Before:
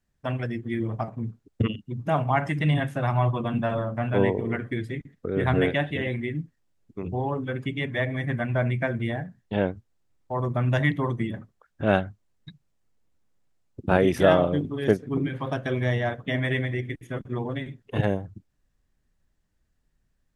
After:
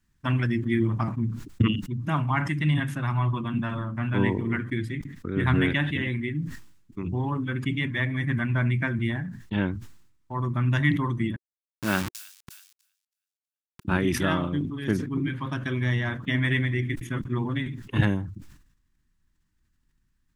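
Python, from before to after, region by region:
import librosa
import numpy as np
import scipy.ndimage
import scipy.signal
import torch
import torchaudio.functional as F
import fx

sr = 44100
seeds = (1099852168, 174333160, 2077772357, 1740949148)

y = fx.chain(x, sr, fx.delta_hold(step_db=-28.0),
    fx.highpass(hz=240.0, slope=6),
    fx.echo_wet_highpass(ms=322, feedback_pct=35, hz=5000.0, wet_db=-22.5), at=(11.36, 13.85))
y = fx.rider(y, sr, range_db=10, speed_s=2.0)
y = fx.band_shelf(y, sr, hz=570.0, db=-13.0, octaves=1.1)
y = fx.sustainer(y, sr, db_per_s=76.0)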